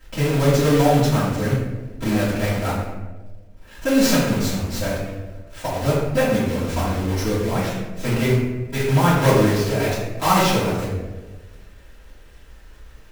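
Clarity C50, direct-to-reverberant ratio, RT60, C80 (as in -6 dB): 1.0 dB, -11.0 dB, 1.3 s, 3.5 dB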